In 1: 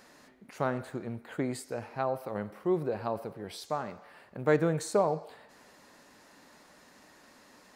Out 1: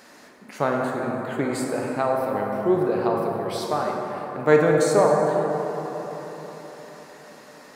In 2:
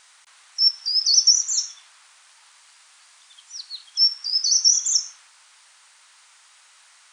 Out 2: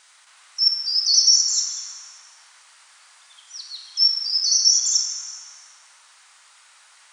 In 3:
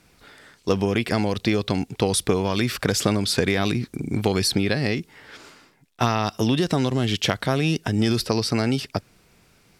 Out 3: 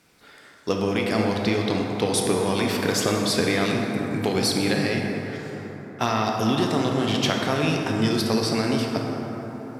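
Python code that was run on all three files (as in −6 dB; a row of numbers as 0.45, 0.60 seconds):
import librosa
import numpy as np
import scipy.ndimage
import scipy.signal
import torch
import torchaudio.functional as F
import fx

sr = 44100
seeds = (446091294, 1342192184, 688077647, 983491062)

y = fx.highpass(x, sr, hz=160.0, slope=6)
y = fx.rev_plate(y, sr, seeds[0], rt60_s=4.4, hf_ratio=0.35, predelay_ms=0, drr_db=-0.5)
y = y * 10.0 ** (-24 / 20.0) / np.sqrt(np.mean(np.square(y)))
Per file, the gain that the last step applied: +7.0, −1.0, −2.0 decibels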